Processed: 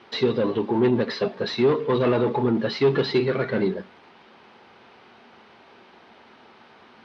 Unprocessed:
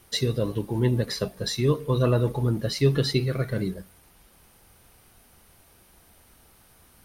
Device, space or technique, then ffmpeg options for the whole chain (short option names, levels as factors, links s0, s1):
overdrive pedal into a guitar cabinet: -filter_complex "[0:a]asplit=2[s0][s1];[s1]highpass=f=720:p=1,volume=15.8,asoftclip=type=tanh:threshold=0.355[s2];[s0][s2]amix=inputs=2:normalize=0,lowpass=f=2600:p=1,volume=0.501,highpass=100,equalizer=f=230:t=q:w=4:g=9,equalizer=f=390:t=q:w=4:g=7,equalizer=f=900:t=q:w=4:g=4,lowpass=f=4300:w=0.5412,lowpass=f=4300:w=1.3066,volume=0.501"